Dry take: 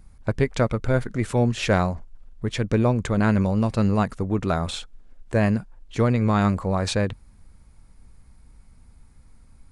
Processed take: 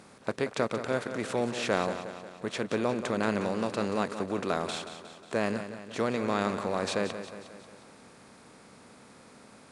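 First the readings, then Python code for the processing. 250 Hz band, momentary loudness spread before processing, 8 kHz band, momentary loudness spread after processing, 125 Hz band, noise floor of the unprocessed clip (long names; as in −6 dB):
−9.5 dB, 9 LU, −4.0 dB, 11 LU, −17.5 dB, −52 dBFS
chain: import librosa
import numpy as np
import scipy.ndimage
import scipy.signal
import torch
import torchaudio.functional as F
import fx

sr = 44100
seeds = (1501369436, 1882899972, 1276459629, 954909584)

y = fx.bin_compress(x, sr, power=0.6)
y = scipy.signal.sosfilt(scipy.signal.butter(2, 240.0, 'highpass', fs=sr, output='sos'), y)
y = fx.echo_feedback(y, sr, ms=180, feedback_pct=55, wet_db=-10.5)
y = y * librosa.db_to_amplitude(-8.5)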